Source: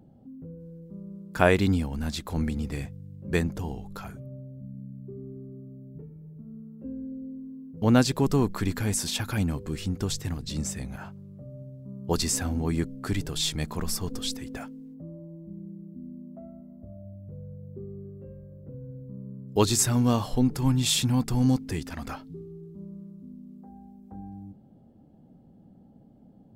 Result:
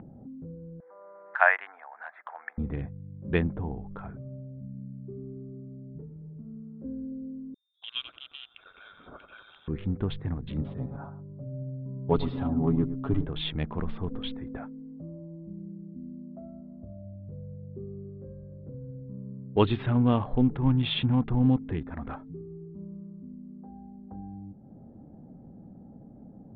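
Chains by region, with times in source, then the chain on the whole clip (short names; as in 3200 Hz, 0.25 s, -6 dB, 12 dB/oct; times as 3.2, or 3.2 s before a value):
0.8–2.58 Chebyshev high-pass 700 Hz, order 4 + resonant high shelf 2600 Hz -13 dB, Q 3 + upward compressor, threshold -42 dBFS
7.54–9.68 vowel filter a + inverted band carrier 3900 Hz + lo-fi delay 86 ms, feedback 55%, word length 10-bit, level -8 dB
10.61–13.25 band shelf 2200 Hz -12.5 dB 1.2 oct + comb 7.2 ms, depth 82% + echo 0.106 s -13.5 dB
whole clip: Wiener smoothing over 15 samples; steep low-pass 3500 Hz 72 dB/oct; upward compressor, threshold -40 dBFS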